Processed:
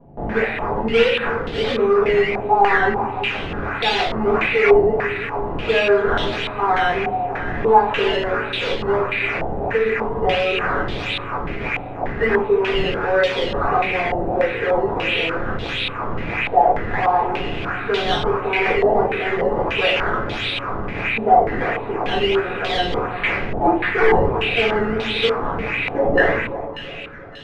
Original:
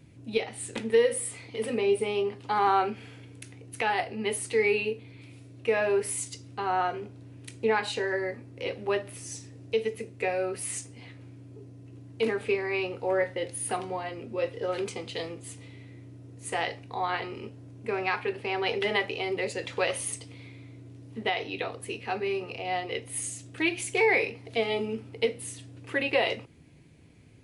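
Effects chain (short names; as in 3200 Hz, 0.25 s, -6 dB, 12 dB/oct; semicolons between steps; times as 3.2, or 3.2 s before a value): rattling part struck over -48 dBFS, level -25 dBFS; in parallel at +0.5 dB: level quantiser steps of 21 dB; on the sum: decimation with a swept rate 13×, swing 100% 1.5 Hz; soft clip -20 dBFS, distortion -11 dB; on a send: split-band echo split 1100 Hz, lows 0.345 s, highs 0.587 s, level -13 dB; on the sum: shoebox room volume 34 m³, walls mixed, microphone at 1.3 m; stepped low-pass 3.4 Hz 760–3500 Hz; gain -2 dB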